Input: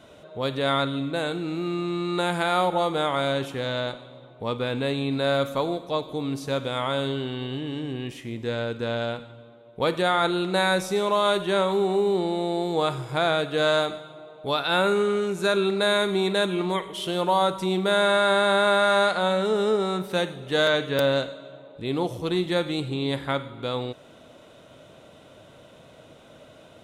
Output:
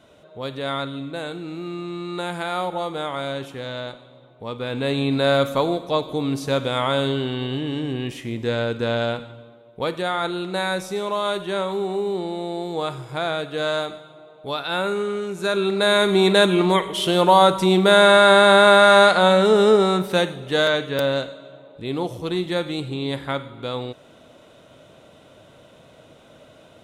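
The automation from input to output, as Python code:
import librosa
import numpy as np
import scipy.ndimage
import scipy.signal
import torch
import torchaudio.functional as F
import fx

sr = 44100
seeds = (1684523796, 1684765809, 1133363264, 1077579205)

y = fx.gain(x, sr, db=fx.line((4.52, -3.0), (4.99, 5.0), (9.27, 5.0), (9.94, -2.0), (15.28, -2.0), (16.28, 8.0), (19.79, 8.0), (20.89, 0.5)))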